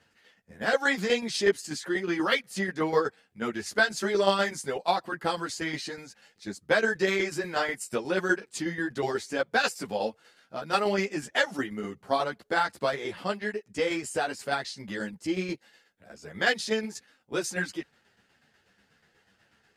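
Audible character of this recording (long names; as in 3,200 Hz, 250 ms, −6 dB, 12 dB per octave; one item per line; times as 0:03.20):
tremolo saw down 8.2 Hz, depth 60%
a shimmering, thickened sound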